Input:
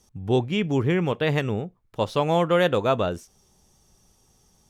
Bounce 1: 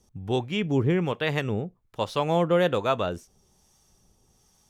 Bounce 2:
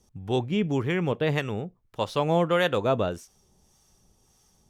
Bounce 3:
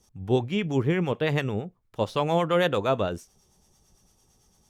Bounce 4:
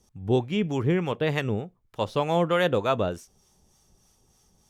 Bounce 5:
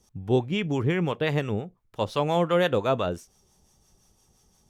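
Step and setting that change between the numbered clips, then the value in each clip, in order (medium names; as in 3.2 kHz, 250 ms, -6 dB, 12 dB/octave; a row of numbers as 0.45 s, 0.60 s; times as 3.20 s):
harmonic tremolo, rate: 1.2 Hz, 1.7 Hz, 8.9 Hz, 3.3 Hz, 5.8 Hz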